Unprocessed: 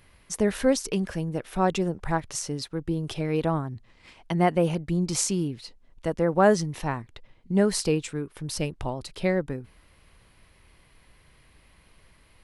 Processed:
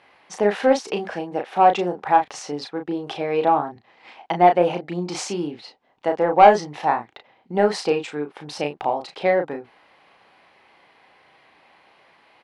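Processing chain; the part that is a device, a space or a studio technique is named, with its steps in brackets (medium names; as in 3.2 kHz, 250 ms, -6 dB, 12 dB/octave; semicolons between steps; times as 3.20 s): intercom (band-pass 350–3600 Hz; peaking EQ 790 Hz +11 dB 0.36 oct; saturation -9 dBFS, distortion -17 dB; doubling 34 ms -6 dB); trim +5.5 dB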